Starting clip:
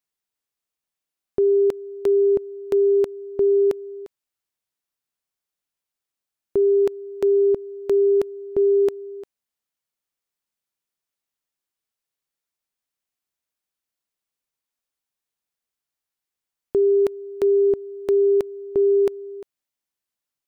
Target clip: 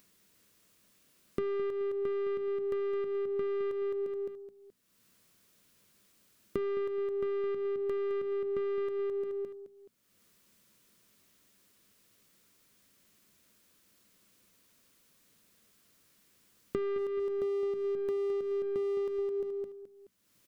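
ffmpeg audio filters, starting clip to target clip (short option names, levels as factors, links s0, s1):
-filter_complex "[0:a]asettb=1/sr,asplit=3[s0][s1][s2];[s0]atrim=end=16.984[s3];[s1]atrim=start=16.98:end=19.19,asetpts=PTS-STARTPTS,afade=t=in:d=0.004:c=qsin,afade=t=out:st=2.206:d=0.004:c=qsin,aeval=exprs='if(lt(val(0),0),0.251*val(0),val(0))':c=same[s4];[s2]atrim=start=19.186[s5];[s3][s4]acrossfade=d=0.004:c1=hsin:c2=qsin[s6];[s6][s5]acrossfade=d=0.004:c1=qsin:c2=hsin,aeval=exprs='(tanh(20*val(0)+0.4)-tanh(0.4))/20':c=same,bandreject=f=60:t=h:w=6,bandreject=f=120:t=h:w=6,bandreject=f=180:t=h:w=6,bandreject=f=240:t=h:w=6,aecho=1:1:213|426|639:0.501|0.135|0.0365,acompressor=threshold=0.0178:ratio=16,equalizer=f=100:t=o:w=0.33:g=6,equalizer=f=200:t=o:w=0.33:g=6,equalizer=f=800:t=o:w=0.33:g=-10,acompressor=mode=upward:threshold=0.00316:ratio=2.5,equalizer=f=230:w=0.57:g=7.5"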